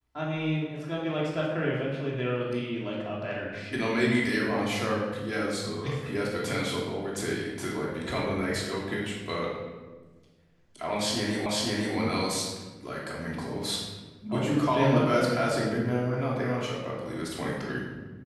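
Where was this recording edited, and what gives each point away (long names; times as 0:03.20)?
0:11.46: the same again, the last 0.5 s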